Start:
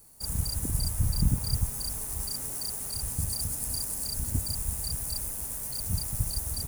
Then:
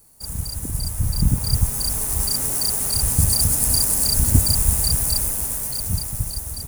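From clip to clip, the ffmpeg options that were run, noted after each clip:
ffmpeg -i in.wav -af "dynaudnorm=framelen=340:gausssize=9:maxgain=13.5dB,volume=2dB" out.wav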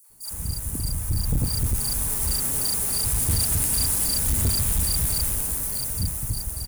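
ffmpeg -i in.wav -filter_complex "[0:a]acrossover=split=690|5600[link_01][link_02][link_03];[link_02]adelay=40[link_04];[link_01]adelay=100[link_05];[link_05][link_04][link_03]amix=inputs=3:normalize=0,asoftclip=type=tanh:threshold=-17.5dB" out.wav

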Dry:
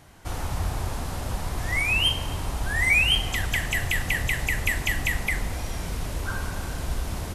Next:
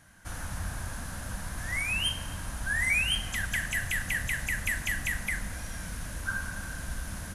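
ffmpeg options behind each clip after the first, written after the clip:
ffmpeg -i in.wav -af "equalizer=frequency=200:width_type=o:width=0.33:gain=6,equalizer=frequency=400:width_type=o:width=0.33:gain=-12,equalizer=frequency=800:width_type=o:width=0.33:gain=-4,equalizer=frequency=1600:width_type=o:width=0.33:gain=12,equalizer=frequency=6300:width_type=o:width=0.33:gain=5,equalizer=frequency=10000:width_type=o:width=0.33:gain=11,volume=-8dB" out.wav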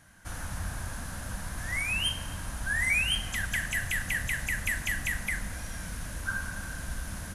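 ffmpeg -i in.wav -af anull out.wav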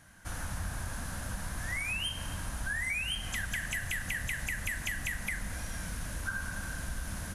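ffmpeg -i in.wav -af "acompressor=threshold=-31dB:ratio=6" out.wav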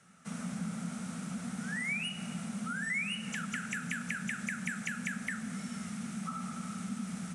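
ffmpeg -i in.wav -af "afreqshift=-260,highpass=160,equalizer=frequency=180:width_type=q:width=4:gain=8,equalizer=frequency=400:width_type=q:width=4:gain=-6,equalizer=frequency=1000:width_type=q:width=4:gain=-7,equalizer=frequency=2200:width_type=q:width=4:gain=5,equalizer=frequency=4600:width_type=q:width=4:gain=-3,equalizer=frequency=8100:width_type=q:width=4:gain=5,lowpass=frequency=9000:width=0.5412,lowpass=frequency=9000:width=1.3066,volume=-3.5dB" out.wav

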